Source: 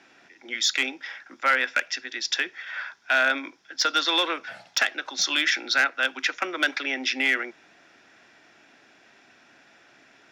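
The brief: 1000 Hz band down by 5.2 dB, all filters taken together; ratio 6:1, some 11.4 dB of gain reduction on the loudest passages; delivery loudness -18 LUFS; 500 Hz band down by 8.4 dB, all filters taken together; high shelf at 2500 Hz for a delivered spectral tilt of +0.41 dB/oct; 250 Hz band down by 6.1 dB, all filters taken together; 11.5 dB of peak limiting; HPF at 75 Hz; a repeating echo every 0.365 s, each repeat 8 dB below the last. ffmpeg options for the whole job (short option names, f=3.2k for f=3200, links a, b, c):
-af "highpass=75,equalizer=f=250:t=o:g=-4,equalizer=f=500:t=o:g=-8,equalizer=f=1k:t=o:g=-5.5,highshelf=f=2.5k:g=-4,acompressor=threshold=-34dB:ratio=6,alimiter=level_in=5dB:limit=-24dB:level=0:latency=1,volume=-5dB,aecho=1:1:365|730|1095|1460|1825:0.398|0.159|0.0637|0.0255|0.0102,volume=21.5dB"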